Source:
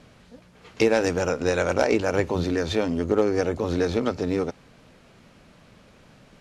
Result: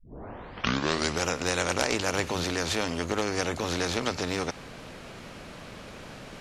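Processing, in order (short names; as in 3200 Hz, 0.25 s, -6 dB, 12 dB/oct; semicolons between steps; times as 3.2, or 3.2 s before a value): tape start at the beginning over 1.28 s; spectral compressor 2:1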